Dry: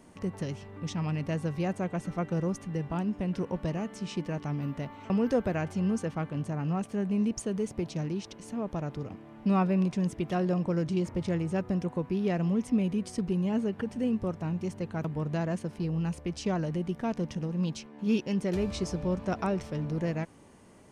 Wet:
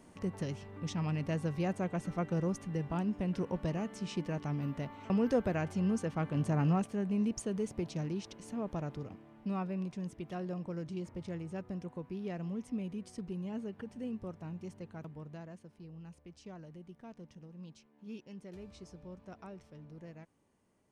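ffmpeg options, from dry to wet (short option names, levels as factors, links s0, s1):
-af "volume=1.41,afade=t=in:st=6.11:d=0.5:silence=0.501187,afade=t=out:st=6.61:d=0.32:silence=0.446684,afade=t=out:st=8.81:d=0.74:silence=0.446684,afade=t=out:st=14.72:d=0.86:silence=0.398107"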